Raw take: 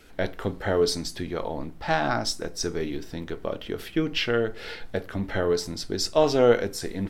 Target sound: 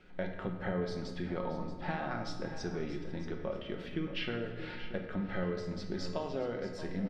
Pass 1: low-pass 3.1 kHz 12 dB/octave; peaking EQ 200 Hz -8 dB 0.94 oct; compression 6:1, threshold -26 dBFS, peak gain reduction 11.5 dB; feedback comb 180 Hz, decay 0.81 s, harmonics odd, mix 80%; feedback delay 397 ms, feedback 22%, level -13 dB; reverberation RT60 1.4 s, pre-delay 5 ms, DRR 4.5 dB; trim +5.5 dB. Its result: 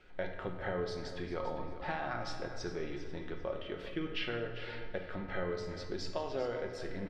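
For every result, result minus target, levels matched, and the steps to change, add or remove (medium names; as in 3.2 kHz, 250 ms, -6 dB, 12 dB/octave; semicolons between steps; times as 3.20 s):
echo 233 ms early; 250 Hz band -3.5 dB
change: feedback delay 630 ms, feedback 22%, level -13 dB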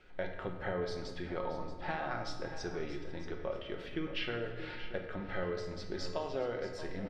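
250 Hz band -3.5 dB
change: peaking EQ 200 Hz +2.5 dB 0.94 oct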